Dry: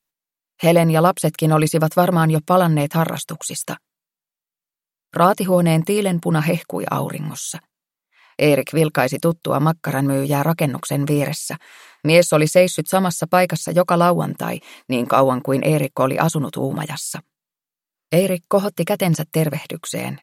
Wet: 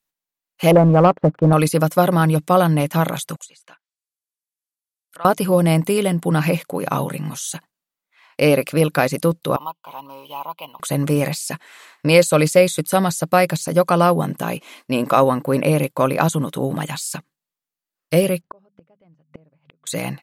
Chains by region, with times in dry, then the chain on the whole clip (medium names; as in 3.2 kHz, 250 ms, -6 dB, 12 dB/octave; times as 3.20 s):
0.71–1.53 s: low-pass 1.3 kHz 24 dB/octave + waveshaping leveller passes 1
3.36–5.25 s: low-pass that closes with the level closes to 1.8 kHz, closed at -24 dBFS + brick-wall FIR low-pass 13 kHz + differentiator
9.56–10.80 s: two resonant band-passes 1.7 kHz, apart 1.6 oct + careless resampling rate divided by 3×, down none, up hold
18.41–19.87 s: hum notches 50/100/150/200/250 Hz + inverted gate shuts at -15 dBFS, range -35 dB + tape spacing loss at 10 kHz 40 dB
whole clip: none